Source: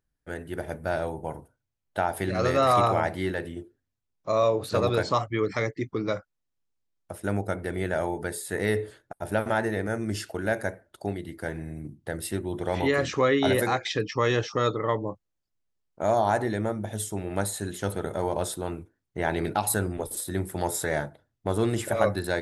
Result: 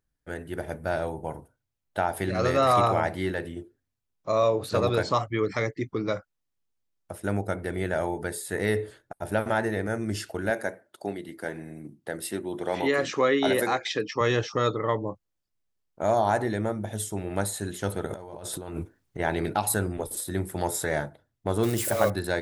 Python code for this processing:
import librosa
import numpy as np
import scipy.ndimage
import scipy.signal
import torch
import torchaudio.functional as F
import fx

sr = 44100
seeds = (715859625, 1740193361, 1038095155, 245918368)

y = fx.highpass(x, sr, hz=200.0, slope=12, at=(10.5, 14.21))
y = fx.over_compress(y, sr, threshold_db=-39.0, ratio=-1.0, at=(18.06, 19.18), fade=0.02)
y = fx.crossing_spikes(y, sr, level_db=-25.5, at=(21.63, 22.1))